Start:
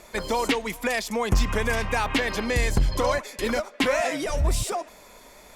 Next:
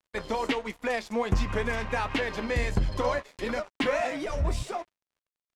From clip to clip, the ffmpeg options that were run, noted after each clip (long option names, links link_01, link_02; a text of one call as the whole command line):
ffmpeg -i in.wav -af "flanger=delay=9:depth=5.4:regen=57:speed=1.4:shape=triangular,aeval=exprs='sgn(val(0))*max(abs(val(0))-0.00668,0)':channel_layout=same,aemphasis=mode=reproduction:type=50fm,volume=1.5dB" out.wav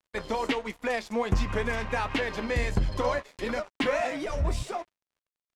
ffmpeg -i in.wav -af anull out.wav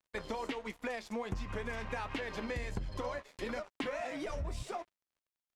ffmpeg -i in.wav -af "acompressor=threshold=-30dB:ratio=6,volume=-4.5dB" out.wav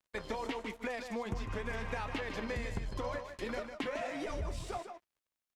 ffmpeg -i in.wav -af "aecho=1:1:153:0.398" out.wav